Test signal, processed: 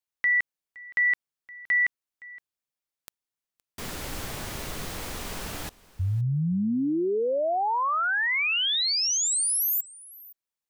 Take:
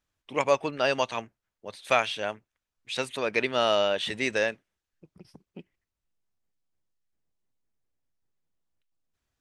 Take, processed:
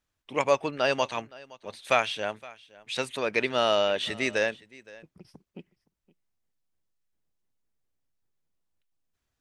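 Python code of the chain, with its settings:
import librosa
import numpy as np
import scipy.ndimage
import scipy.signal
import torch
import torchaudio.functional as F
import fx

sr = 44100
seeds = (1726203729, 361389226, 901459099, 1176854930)

y = x + 10.0 ** (-21.5 / 20.0) * np.pad(x, (int(517 * sr / 1000.0), 0))[:len(x)]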